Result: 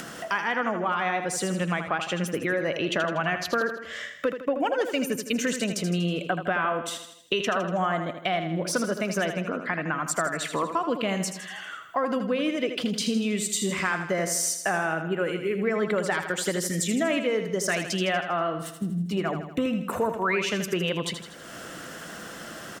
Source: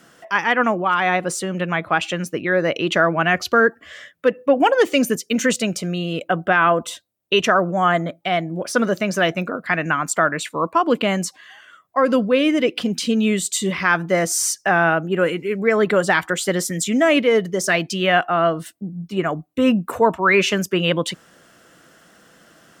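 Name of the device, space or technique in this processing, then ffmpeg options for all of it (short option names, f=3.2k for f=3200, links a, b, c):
upward and downward compression: -filter_complex "[0:a]acompressor=mode=upward:threshold=-34dB:ratio=2.5,acompressor=threshold=-29dB:ratio=4,asettb=1/sr,asplit=3[a][b][c];[a]atrim=end=9.244[d];[b]atrim=start=9.24:end=10,asetpts=PTS-STARTPTS,afade=t=in:d=0.004:c=qsin,afade=t=out:st=0.756:d=0.004:c=qsin,aemphasis=mode=reproduction:type=75kf[e];[c]atrim=start=9.996[f];[d][e]acrossfade=d=0.004:c1=hsin:c2=qsin[g];[g][f]acrossfade=d=0.004:c1=qsin:c2=hsin,aecho=1:1:80|160|240|320|400|480:0.376|0.199|0.106|0.056|0.0297|0.0157,volume=3dB"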